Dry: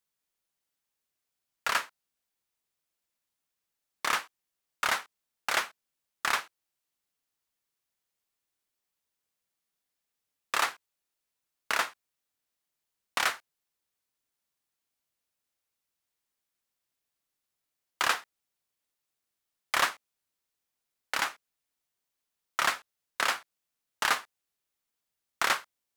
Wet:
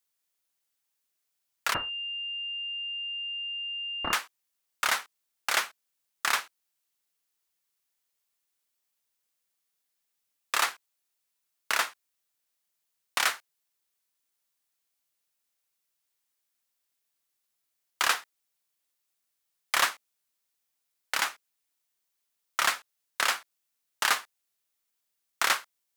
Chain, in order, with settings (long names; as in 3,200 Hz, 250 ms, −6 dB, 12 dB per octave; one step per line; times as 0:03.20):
spectral tilt +1.5 dB per octave
0:01.74–0:04.13: switching amplifier with a slow clock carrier 2,800 Hz